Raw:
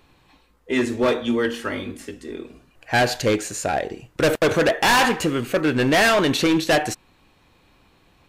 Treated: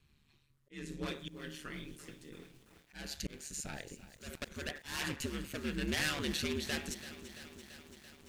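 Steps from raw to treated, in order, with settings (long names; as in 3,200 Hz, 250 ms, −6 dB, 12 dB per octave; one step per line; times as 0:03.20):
guitar amp tone stack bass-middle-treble 6-0-2
volume swells 273 ms
ring modulation 73 Hz
feedback echo at a low word length 337 ms, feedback 80%, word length 10 bits, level −14 dB
level +6 dB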